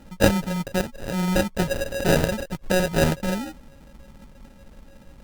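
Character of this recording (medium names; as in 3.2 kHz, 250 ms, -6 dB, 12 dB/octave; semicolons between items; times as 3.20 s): a buzz of ramps at a fixed pitch in blocks of 16 samples; phasing stages 6, 3.4 Hz, lowest notch 410–1200 Hz; aliases and images of a low sample rate 1.1 kHz, jitter 0%; Vorbis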